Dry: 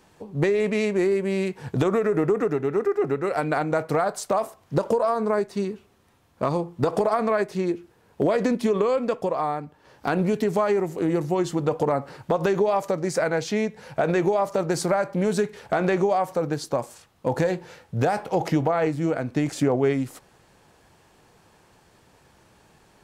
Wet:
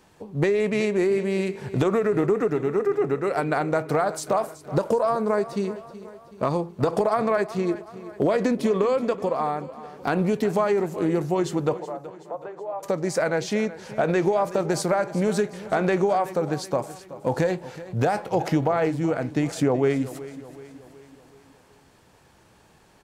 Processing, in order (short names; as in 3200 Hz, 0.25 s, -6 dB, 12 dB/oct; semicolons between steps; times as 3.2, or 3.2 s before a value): 11.79–12.83 ladder band-pass 790 Hz, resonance 30%; feedback echo 0.375 s, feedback 51%, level -16 dB